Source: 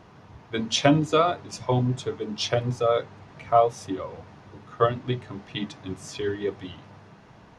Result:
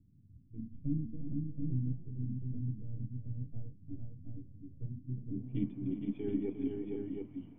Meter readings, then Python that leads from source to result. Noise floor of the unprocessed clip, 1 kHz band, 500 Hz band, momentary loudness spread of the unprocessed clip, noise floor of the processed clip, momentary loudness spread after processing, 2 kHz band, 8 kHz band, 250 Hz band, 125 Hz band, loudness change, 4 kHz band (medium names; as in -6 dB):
-51 dBFS, under -40 dB, -21.0 dB, 16 LU, -59 dBFS, 12 LU, under -30 dB, under -40 dB, -7.5 dB, -7.5 dB, -14.0 dB, under -35 dB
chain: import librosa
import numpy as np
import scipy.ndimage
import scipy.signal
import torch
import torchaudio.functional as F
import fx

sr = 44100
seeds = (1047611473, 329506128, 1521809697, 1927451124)

p1 = np.where(x < 0.0, 10.0 ** (-7.0 / 20.0) * x, x)
p2 = fx.formant_cascade(p1, sr, vowel='i')
p3 = fx.filter_sweep_lowpass(p2, sr, from_hz=110.0, to_hz=1400.0, start_s=5.11, end_s=5.61, q=1.1)
p4 = p3 + fx.echo_multitap(p3, sr, ms=(353, 463, 724), db=(-10.0, -4.0, -4.5), dry=0)
y = F.gain(torch.from_numpy(p4), 5.0).numpy()